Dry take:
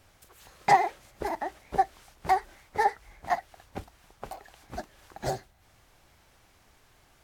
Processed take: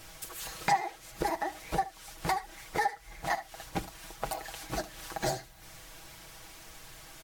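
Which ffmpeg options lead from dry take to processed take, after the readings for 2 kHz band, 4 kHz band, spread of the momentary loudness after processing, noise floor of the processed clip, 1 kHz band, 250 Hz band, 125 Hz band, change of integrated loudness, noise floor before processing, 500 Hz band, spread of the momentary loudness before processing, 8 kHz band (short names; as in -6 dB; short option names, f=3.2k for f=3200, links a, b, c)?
-1.0 dB, +4.5 dB, 17 LU, -53 dBFS, -5.5 dB, +1.0 dB, +1.0 dB, -5.5 dB, -62 dBFS, -3.0 dB, 21 LU, +6.5 dB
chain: -filter_complex "[0:a]highshelf=f=2.7k:g=7.5,aecho=1:1:6.2:0.77,acompressor=threshold=-38dB:ratio=3,aphaser=in_gain=1:out_gain=1:delay=3.4:decay=0.2:speed=1.6:type=triangular,asplit=2[a][b];[b]aecho=0:1:75:0.133[c];[a][c]amix=inputs=2:normalize=0,volume=6.5dB"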